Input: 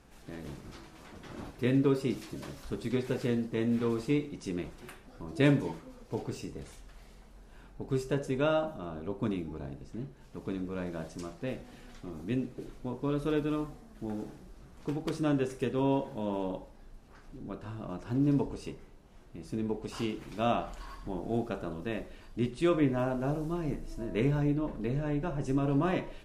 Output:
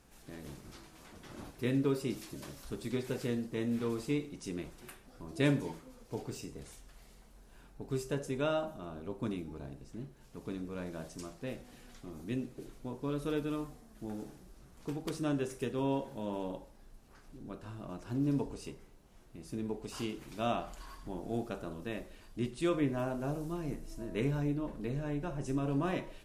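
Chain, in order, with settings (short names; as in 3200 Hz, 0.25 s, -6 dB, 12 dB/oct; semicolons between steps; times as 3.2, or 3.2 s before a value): high shelf 6100 Hz +10 dB; gain -4.5 dB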